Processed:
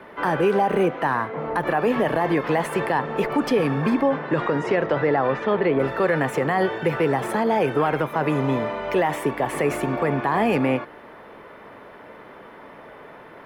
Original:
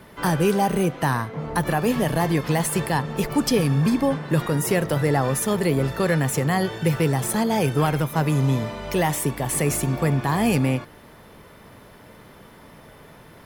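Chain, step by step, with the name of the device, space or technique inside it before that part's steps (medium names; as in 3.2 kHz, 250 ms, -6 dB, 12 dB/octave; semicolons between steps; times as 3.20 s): 4.03–5.78 s: low-pass 9 kHz -> 3.7 kHz 24 dB/octave; DJ mixer with the lows and highs turned down (three-band isolator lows -16 dB, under 270 Hz, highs -21 dB, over 2.7 kHz; peak limiter -18 dBFS, peak gain reduction 6.5 dB); trim +6.5 dB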